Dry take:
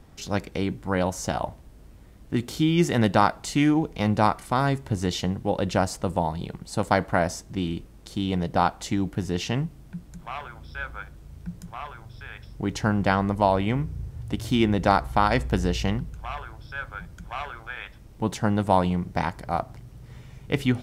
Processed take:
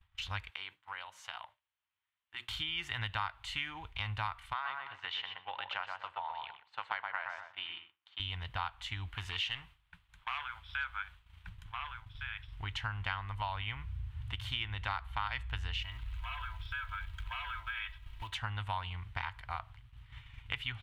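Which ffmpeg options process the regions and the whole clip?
ffmpeg -i in.wav -filter_complex "[0:a]asettb=1/sr,asplit=3[link_01][link_02][link_03];[link_01]atrim=end=0.504[link_04];[link_02]atrim=start=0.5:end=2.49,asetpts=PTS-STARTPTS,afade=type=in:duration=0.004:curve=qsin,afade=type=out:start_time=1.986:duration=0.004:curve=qsin,highpass=360,bandreject=frequency=60:width_type=h:width=6,bandreject=frequency=120:width_type=h:width=6,bandreject=frequency=180:width_type=h:width=6,bandreject=frequency=240:width_type=h:width=6,bandreject=frequency=300:width_type=h:width=6,bandreject=frequency=360:width_type=h:width=6,bandreject=frequency=420:width_type=h:width=6,bandreject=frequency=480:width_type=h:width=6,bandreject=frequency=540:width_type=h:width=6,bandreject=frequency=600:width_type=h:width=6,acompressor=threshold=-32dB:ratio=8:attack=3.2:release=140:knee=1:detection=peak[link_05];[link_03]atrim=start=2.486[link_06];[link_04][link_05]acrossfade=duration=0.004:curve1=hsin:curve2=qsin[link_07];[link_07][link_06]acrossfade=duration=0.004:curve1=qsin:curve2=hsin,asettb=1/sr,asplit=3[link_08][link_09][link_10];[link_08]atrim=end=4.534[link_11];[link_09]atrim=start=4.53:end=8.2,asetpts=PTS-STARTPTS,afade=type=in:duration=0.004:curve=qsin,afade=type=out:start_time=3.666:duration=0.004:curve=qsin,highpass=530,lowpass=3000,asplit=2[link_12][link_13];[link_13]adelay=123,lowpass=frequency=1700:poles=1,volume=-3dB,asplit=2[link_14][link_15];[link_15]adelay=123,lowpass=frequency=1700:poles=1,volume=0.33,asplit=2[link_16][link_17];[link_17]adelay=123,lowpass=frequency=1700:poles=1,volume=0.33,asplit=2[link_18][link_19];[link_19]adelay=123,lowpass=frequency=1700:poles=1,volume=0.33[link_20];[link_12][link_14][link_16][link_18][link_20]amix=inputs=5:normalize=0,atrim=end_sample=161847[link_21];[link_10]atrim=start=8.196[link_22];[link_11][link_21]acrossfade=duration=0.004:curve1=hsin:curve2=qsin[link_23];[link_23][link_22]acrossfade=duration=0.004:curve1=qsin:curve2=hsin,asettb=1/sr,asplit=3[link_24][link_25][link_26];[link_24]atrim=end=9.154[link_27];[link_25]atrim=start=9.15:end=11.49,asetpts=PTS-STARTPTS,afade=type=in:duration=0.004:curve=qsin,afade=type=out:start_time=2.336:duration=0.004:curve=qsin,lowshelf=frequency=220:gain=-11,acontrast=37,volume=20dB,asoftclip=hard,volume=-20dB[link_28];[link_26]atrim=start=11.486[link_29];[link_27][link_28]acrossfade=duration=0.004:curve1=hsin:curve2=qsin[link_30];[link_30][link_29]acrossfade=duration=0.004:curve1=qsin:curve2=hsin,asettb=1/sr,asplit=3[link_31][link_32][link_33];[link_31]atrim=end=15.824[link_34];[link_32]atrim=start=15.82:end=18.34,asetpts=PTS-STARTPTS,afade=type=in:duration=0.004:curve=qsin,afade=type=out:start_time=2.516:duration=0.004:curve=qsin,aecho=1:1:3.1:0.99,atrim=end_sample=111132,acompressor=threshold=-31dB:ratio=5:attack=3.2:release=140:knee=1:detection=peak,acrusher=bits=5:mode=log:mix=0:aa=0.000001[link_35];[link_33]atrim=start=18.336[link_36];[link_34][link_35]acrossfade=duration=0.004:curve1=hsin:curve2=qsin[link_37];[link_37][link_36]acrossfade=duration=0.004:curve1=qsin:curve2=hsin,firequalizer=gain_entry='entry(100,0);entry(160,-23);entry(240,-26);entry(520,-22);entry(950,0);entry(3100,9);entry(5200,-12)':delay=0.05:min_phase=1,agate=range=-33dB:threshold=-38dB:ratio=3:detection=peak,acompressor=threshold=-45dB:ratio=2.5,volume=3.5dB" out.wav

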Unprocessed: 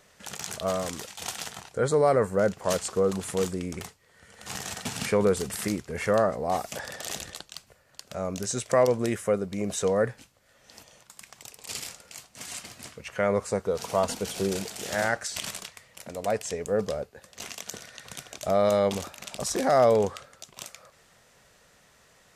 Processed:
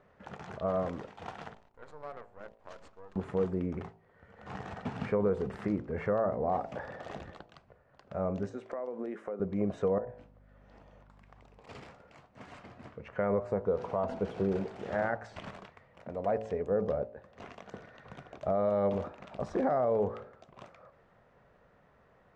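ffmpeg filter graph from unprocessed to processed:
ffmpeg -i in.wav -filter_complex "[0:a]asettb=1/sr,asplit=3[link_01][link_02][link_03];[link_01]atrim=end=1.544[link_04];[link_02]atrim=start=1.54:end=3.16,asetpts=PTS-STARTPTS,afade=type=in:duration=0.004:curve=qsin,afade=type=out:start_time=1.616:duration=0.004:curve=qsin,lowpass=6800,aderivative,acrusher=bits=7:dc=4:mix=0:aa=0.000001[link_05];[link_03]atrim=start=3.156[link_06];[link_04][link_05]acrossfade=duration=0.004:curve1=hsin:curve2=qsin[link_07];[link_07][link_06]acrossfade=duration=0.004:curve1=qsin:curve2=hsin,asettb=1/sr,asplit=3[link_08][link_09][link_10];[link_08]atrim=end=8.494[link_11];[link_09]atrim=start=8.49:end=9.4,asetpts=PTS-STARTPTS,afade=type=in:duration=0.004:curve=qsin,afade=type=out:start_time=0.906:duration=0.004:curve=qsin,highpass=frequency=230:width=0.5412,highpass=frequency=230:width=1.3066,acompressor=threshold=-32dB:ratio=16:attack=3.2:release=140:knee=1:detection=peak[link_12];[link_10]atrim=start=9.396[link_13];[link_11][link_12]acrossfade=duration=0.004:curve1=hsin:curve2=qsin[link_14];[link_14][link_13]acrossfade=duration=0.004:curve1=qsin:curve2=hsin,asettb=1/sr,asplit=3[link_15][link_16][link_17];[link_15]atrim=end=9.984[link_18];[link_16]atrim=start=9.98:end=11.59,asetpts=PTS-STARTPTS,afade=type=in:duration=0.004:curve=qsin,afade=type=out:start_time=1.606:duration=0.004:curve=qsin,acompressor=threshold=-46dB:ratio=3:attack=3.2:release=140:knee=1:detection=peak,aeval=exprs='val(0)+0.00126*(sin(2*PI*50*n/s)+sin(2*PI*2*50*n/s)/2+sin(2*PI*3*50*n/s)/3+sin(2*PI*4*50*n/s)/4+sin(2*PI*5*50*n/s)/5)':channel_layout=same[link_19];[link_17]atrim=start=11.586[link_20];[link_18][link_19]acrossfade=duration=0.004:curve1=hsin:curve2=qsin[link_21];[link_21][link_20]acrossfade=duration=0.004:curve1=qsin:curve2=hsin,lowpass=1200,bandreject=frequency=55.03:width_type=h:width=4,bandreject=frequency=110.06:width_type=h:width=4,bandreject=frequency=165.09:width_type=h:width=4,bandreject=frequency=220.12:width_type=h:width=4,bandreject=frequency=275.15:width_type=h:width=4,bandreject=frequency=330.18:width_type=h:width=4,bandreject=frequency=385.21:width_type=h:width=4,bandreject=frequency=440.24:width_type=h:width=4,bandreject=frequency=495.27:width_type=h:width=4,bandreject=frequency=550.3:width_type=h:width=4,bandreject=frequency=605.33:width_type=h:width=4,bandreject=frequency=660.36:width_type=h:width=4,bandreject=frequency=715.39:width_type=h:width=4,bandreject=frequency=770.42:width_type=h:width=4,bandreject=frequency=825.45:width_type=h:width=4,bandreject=frequency=880.48:width_type=h:width=4,bandreject=frequency=935.51:width_type=h:width=4,bandreject=frequency=990.54:width_type=h:width=4,alimiter=limit=-20dB:level=0:latency=1:release=144" out.wav

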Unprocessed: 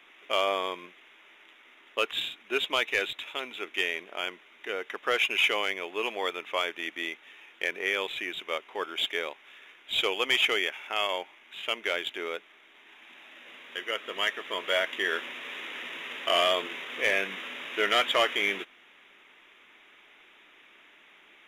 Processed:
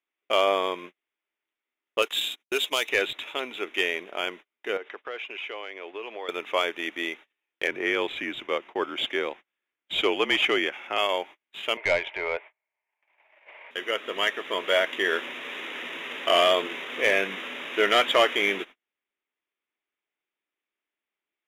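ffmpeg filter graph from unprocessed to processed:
ffmpeg -i in.wav -filter_complex "[0:a]asettb=1/sr,asplit=3[link_01][link_02][link_03];[link_01]atrim=end=2.024[link_04];[link_02]atrim=start=2.02:end=2.89,asetpts=PTS-STARTPTS,afade=type=in:duration=0.004:curve=qsin,afade=type=out:start_time=0.866:duration=0.004:curve=qsin,bass=frequency=250:gain=-6,treble=frequency=4000:gain=14,acompressor=threshold=-31dB:ratio=1.5:attack=3.2:release=140:knee=1:detection=peak,agate=range=-24dB:threshold=-41dB:ratio=16:release=100:detection=peak[link_05];[link_03]atrim=start=2.886[link_06];[link_04][link_05]acrossfade=duration=0.004:curve1=hsin:curve2=qsin[link_07];[link_07][link_06]acrossfade=duration=0.004:curve1=qsin:curve2=hsin,asettb=1/sr,asplit=3[link_08][link_09][link_10];[link_08]atrim=end=4.774[link_11];[link_09]atrim=start=4.77:end=6.29,asetpts=PTS-STARTPTS,afade=type=in:duration=0.004:curve=qsin,afade=type=out:start_time=1.516:duration=0.004:curve=qsin,acrossover=split=230 4600:gain=0.112 1 0.112[link_12][link_13][link_14];[link_12][link_13][link_14]amix=inputs=3:normalize=0,acompressor=threshold=-40dB:ratio=3:attack=3.2:release=140:knee=1:detection=peak[link_15];[link_10]atrim=start=6.286[link_16];[link_11][link_15]acrossfade=duration=0.004:curve1=hsin:curve2=qsin[link_17];[link_17][link_16]acrossfade=duration=0.004:curve1=qsin:curve2=hsin,asettb=1/sr,asplit=3[link_18][link_19][link_20];[link_18]atrim=end=7.674[link_21];[link_19]atrim=start=7.67:end=10.98,asetpts=PTS-STARTPTS,afade=type=in:duration=0.004:curve=qsin,afade=type=out:start_time=3.306:duration=0.004:curve=qsin,lowpass=frequency=4000:poles=1,afreqshift=-39[link_22];[link_20]atrim=start=10.976[link_23];[link_21][link_22]acrossfade=duration=0.004:curve1=hsin:curve2=qsin[link_24];[link_24][link_23]acrossfade=duration=0.004:curve1=qsin:curve2=hsin,asettb=1/sr,asplit=3[link_25][link_26][link_27];[link_25]atrim=end=11.774[link_28];[link_26]atrim=start=11.77:end=13.71,asetpts=PTS-STARTPTS,afade=type=in:duration=0.004:curve=qsin,afade=type=out:start_time=1.936:duration=0.004:curve=qsin,highpass=frequency=450:width=0.5412,highpass=frequency=450:width=1.3066,equalizer=frequency=630:width_type=q:width=4:gain=8,equalizer=frequency=920:width_type=q:width=4:gain=10,equalizer=frequency=1300:width_type=q:width=4:gain=-3,equalizer=frequency=2200:width_type=q:width=4:gain=8,lowpass=frequency=2700:width=0.5412,lowpass=frequency=2700:width=1.3066,aeval=exprs='(tanh(7.94*val(0)+0.25)-tanh(0.25))/7.94':channel_layout=same[link_29];[link_27]atrim=start=13.706[link_30];[link_28][link_29]acrossfade=duration=0.004:curve1=hsin:curve2=qsin[link_31];[link_31][link_30]acrossfade=duration=0.004:curve1=qsin:curve2=hsin,agate=range=-37dB:threshold=-45dB:ratio=16:detection=peak,equalizer=frequency=380:width_type=o:width=2.6:gain=4.5,volume=2dB" out.wav

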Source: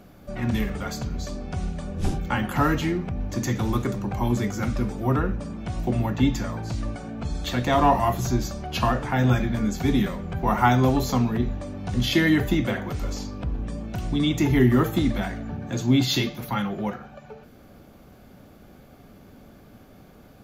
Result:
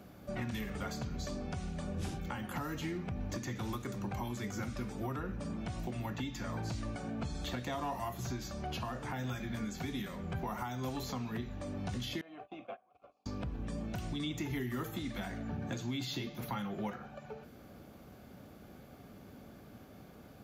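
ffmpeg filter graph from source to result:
ffmpeg -i in.wav -filter_complex "[0:a]asettb=1/sr,asplit=3[link_01][link_02][link_03];[link_01]atrim=end=12.214[link_04];[link_02]atrim=start=12.21:end=13.26,asetpts=PTS-STARTPTS,afade=type=in:duration=0.004:curve=qsin,afade=type=out:start_time=1.046:duration=0.004:curve=qsin,agate=range=-22dB:threshold=-26dB:ratio=16:release=100:detection=peak,asplit=3[link_05][link_06][link_07];[link_05]bandpass=frequency=730:width_type=q:width=8,volume=0dB[link_08];[link_06]bandpass=frequency=1090:width_type=q:width=8,volume=-6dB[link_09];[link_07]bandpass=frequency=2440:width_type=q:width=8,volume=-9dB[link_10];[link_08][link_09][link_10]amix=inputs=3:normalize=0,bass=frequency=250:gain=-3,treble=frequency=4000:gain=-5[link_11];[link_03]atrim=start=13.256[link_12];[link_04][link_11]acrossfade=duration=0.004:curve1=hsin:curve2=qsin[link_13];[link_13][link_12]acrossfade=duration=0.004:curve1=qsin:curve2=hsin,highpass=57,acrossover=split=1200|4200[link_14][link_15][link_16];[link_14]acompressor=threshold=-30dB:ratio=4[link_17];[link_15]acompressor=threshold=-39dB:ratio=4[link_18];[link_16]acompressor=threshold=-44dB:ratio=4[link_19];[link_17][link_18][link_19]amix=inputs=3:normalize=0,alimiter=limit=-24dB:level=0:latency=1:release=387,volume=-4dB" out.wav

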